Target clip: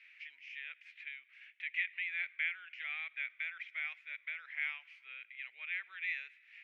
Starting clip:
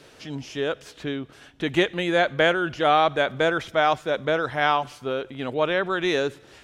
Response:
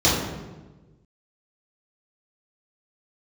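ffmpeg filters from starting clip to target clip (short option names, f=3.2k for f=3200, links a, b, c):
-af "aemphasis=mode=production:type=75fm,acompressor=threshold=-37dB:ratio=1.5,asuperpass=centerf=2200:order=4:qfactor=3.9,volume=1dB"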